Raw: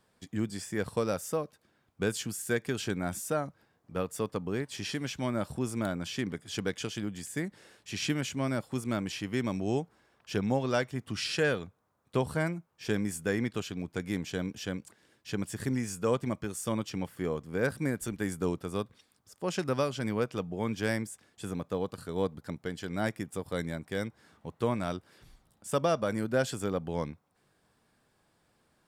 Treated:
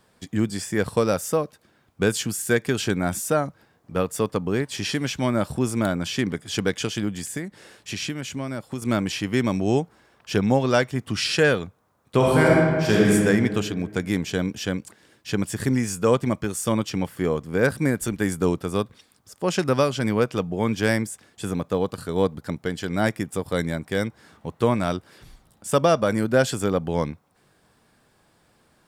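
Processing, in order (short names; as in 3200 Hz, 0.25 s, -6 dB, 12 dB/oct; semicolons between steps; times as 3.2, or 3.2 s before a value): 7.25–8.82 compressor 4:1, threshold -37 dBFS, peak gain reduction 11 dB; 12.16–13.13 reverb throw, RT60 2 s, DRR -4.5 dB; gain +9 dB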